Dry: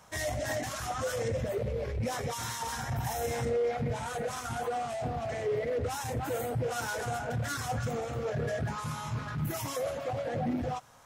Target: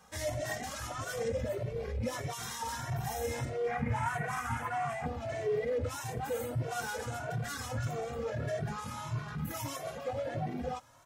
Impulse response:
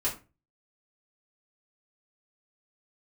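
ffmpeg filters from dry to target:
-filter_complex "[0:a]asettb=1/sr,asplit=3[s0][s1][s2];[s0]atrim=end=3.674[s3];[s1]atrim=start=3.67:end=5.06,asetpts=PTS-STARTPTS,afade=t=in:d=0.004:c=qsin,afade=t=out:st=1.386:d=0.004:c=qsin,equalizer=f=125:t=o:w=1:g=9,equalizer=f=500:t=o:w=1:g=-8,equalizer=f=1000:t=o:w=1:g=8,equalizer=f=2000:t=o:w=1:g=10,equalizer=f=4000:t=o:w=1:g=-9[s4];[s2]atrim=start=5.056[s5];[s3][s4]acrossfade=d=0.004:c1=hsin:c2=qsin[s6];[s6][s5]acrossfade=d=0.004:c1=qsin:c2=hsin,asplit=2[s7][s8];[s8]adelay=2.1,afreqshift=1.6[s9];[s7][s9]amix=inputs=2:normalize=1"

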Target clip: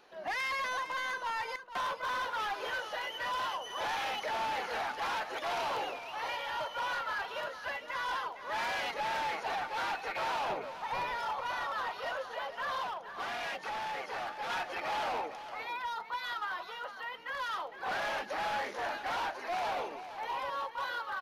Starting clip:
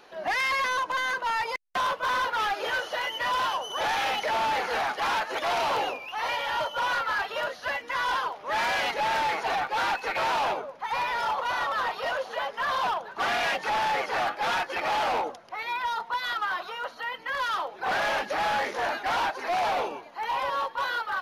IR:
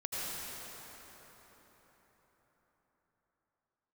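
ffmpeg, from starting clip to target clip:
-filter_complex "[0:a]asettb=1/sr,asplit=3[s0][s1][s2];[s0]atrim=end=10.494[s3];[s1]atrim=start=10.49:end=11.15,asetpts=PTS-STARTPTS,afade=t=in:d=0.004:c=qsin,afade=t=out:st=0.656:d=0.004:c=qsin,lowshelf=f=390:g=8.5[s4];[s2]atrim=start=11.146[s5];[s3][s4]acrossfade=d=0.004:c1=hsin:c2=qsin[s6];[s6][s5]acrossfade=d=0.004:c1=qsin:c2=hsin,aecho=1:1:459:0.266,asettb=1/sr,asplit=3[s7][s8][s9];[s7]atrim=end=12.824[s10];[s8]atrim=start=12.82:end=14.5,asetpts=PTS-STARTPTS,afade=t=in:d=0.004:c=qsin,afade=t=out:st=1.676:d=0.004:c=qsin,acompressor=threshold=0.0355:ratio=2.5[s11];[s9]atrim=start=14.496[s12];[s10][s11]acrossfade=d=0.004:c1=hsin:c2=qsin[s13];[s13][s12]acrossfade=d=0.004:c1=qsin:c2=hsin,volume=0.398"

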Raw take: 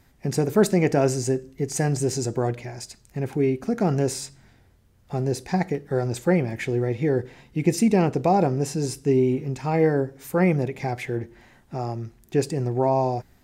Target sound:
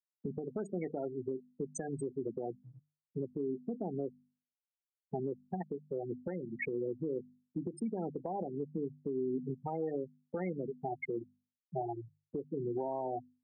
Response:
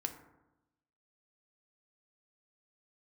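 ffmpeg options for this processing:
-af "afftfilt=real='re*gte(hypot(re,im),0.158)':imag='im*gte(hypot(re,im),0.158)':win_size=1024:overlap=0.75,highpass=f=180:w=0.5412,highpass=f=180:w=1.3066,bandreject=f=50:t=h:w=6,bandreject=f=100:t=h:w=6,bandreject=f=150:t=h:w=6,bandreject=f=200:t=h:w=6,bandreject=f=250:t=h:w=6,acompressor=threshold=0.0398:ratio=6,alimiter=level_in=1.88:limit=0.0631:level=0:latency=1:release=463,volume=0.531,volume=1.26"

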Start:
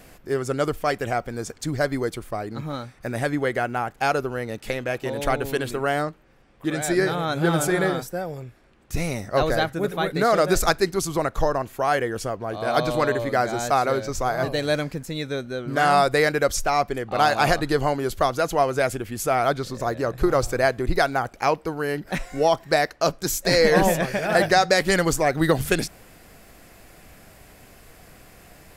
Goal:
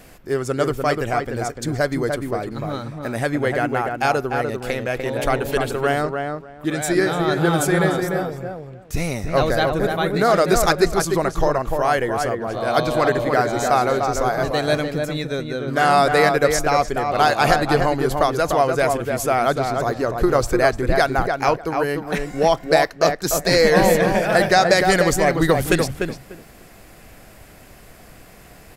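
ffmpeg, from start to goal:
-filter_complex "[0:a]asplit=2[s0][s1];[s1]adelay=297,lowpass=f=1800:p=1,volume=0.631,asplit=2[s2][s3];[s3]adelay=297,lowpass=f=1800:p=1,volume=0.18,asplit=2[s4][s5];[s5]adelay=297,lowpass=f=1800:p=1,volume=0.18[s6];[s0][s2][s4][s6]amix=inputs=4:normalize=0,volume=1.33"

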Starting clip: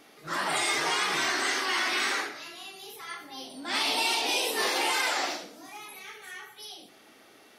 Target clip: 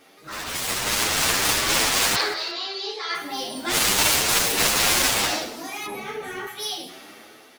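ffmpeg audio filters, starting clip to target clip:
-filter_complex "[0:a]acrusher=bits=4:mode=log:mix=0:aa=0.000001,asettb=1/sr,asplit=3[s0][s1][s2];[s0]atrim=end=5.864[s3];[s1]atrim=start=5.86:end=6.47,asetpts=PTS-STARTPTS,afade=t=in:d=0.004:c=qsin,afade=t=out:st=0.606:d=0.004:c=qsin,tiltshelf=f=1100:g=10[s4];[s2]atrim=start=6.466[s5];[s3][s4]acrossfade=d=0.004:c1=hsin:c2=qsin[s6];[s6][s5]acrossfade=d=0.004:c1=qsin:c2=hsin,aeval=exprs='0.2*(cos(1*acos(clip(val(0)/0.2,-1,1)))-cos(1*PI/2))+0.0794*(cos(7*acos(clip(val(0)/0.2,-1,1)))-cos(7*PI/2))':c=same,asettb=1/sr,asplit=3[s7][s8][s9];[s7]atrim=end=2.154[s10];[s8]atrim=start=2.15:end=3.15,asetpts=PTS-STARTPTS,afade=t=in:d=0.004:c=qsin,afade=t=out:st=0.996:d=0.004:c=qsin,highpass=f=340:w=0.5412,highpass=f=340:w=1.3066,equalizer=f=410:t=q:w=4:g=4,equalizer=f=2700:t=q:w=4:g=-4,equalizer=f=4400:t=q:w=4:g=10,lowpass=f=5400:w=0.5412,lowpass=f=5400:w=1.3066[s11];[s9]atrim=start=3.146[s12];[s10][s11]acrossfade=d=0.004:c1=hsin:c2=qsin[s13];[s13][s12]acrossfade=d=0.004:c1=qsin:c2=hsin,aecho=1:1:177|354:0.141|0.0367,dynaudnorm=f=140:g=13:m=3.98,asplit=2[s14][s15];[s15]adelay=8.7,afreqshift=1.6[s16];[s14][s16]amix=inputs=2:normalize=1"

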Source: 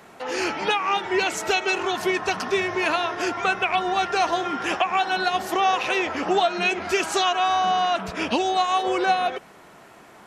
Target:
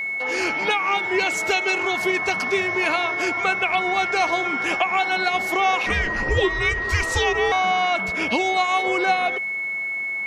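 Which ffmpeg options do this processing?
-filter_complex "[0:a]aeval=exprs='val(0)+0.0631*sin(2*PI*2200*n/s)':c=same,asettb=1/sr,asplit=3[s0][s1][s2];[s0]atrim=end=5.864[s3];[s1]atrim=start=5.86:end=7.52,asetpts=PTS-STARTPTS,afade=t=in:d=0.004:c=qsin,afade=t=out:st=1.656:d=0.004:c=qsin,afreqshift=-310[s4];[s2]atrim=start=7.516[s5];[s3][s4]acrossfade=d=0.004:c1=hsin:c2=qsin[s6];[s6][s5]acrossfade=d=0.004:c1=qsin:c2=hsin"

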